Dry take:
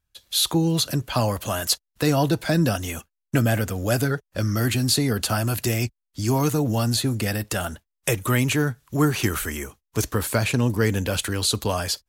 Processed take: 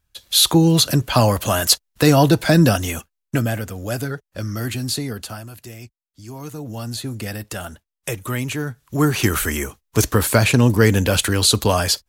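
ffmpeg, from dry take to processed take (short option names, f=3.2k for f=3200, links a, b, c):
-af "volume=28dB,afade=t=out:st=2.65:d=0.94:silence=0.316228,afade=t=out:st=4.94:d=0.56:silence=0.281838,afade=t=in:st=6.34:d=0.91:silence=0.298538,afade=t=in:st=8.65:d=0.88:silence=0.298538"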